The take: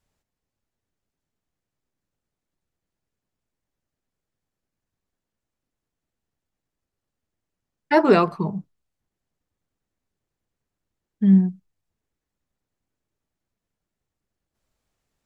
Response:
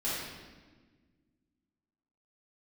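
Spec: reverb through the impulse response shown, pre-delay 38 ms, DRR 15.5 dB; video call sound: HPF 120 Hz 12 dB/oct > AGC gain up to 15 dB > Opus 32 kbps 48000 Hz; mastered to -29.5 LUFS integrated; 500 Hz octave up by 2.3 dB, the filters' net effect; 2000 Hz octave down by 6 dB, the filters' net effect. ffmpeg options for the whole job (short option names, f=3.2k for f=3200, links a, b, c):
-filter_complex "[0:a]equalizer=f=500:t=o:g=3.5,equalizer=f=2k:t=o:g=-8.5,asplit=2[a][b];[1:a]atrim=start_sample=2205,adelay=38[c];[b][c]afir=irnorm=-1:irlink=0,volume=-22.5dB[d];[a][d]amix=inputs=2:normalize=0,highpass=120,dynaudnorm=m=15dB,volume=-11dB" -ar 48000 -c:a libopus -b:a 32k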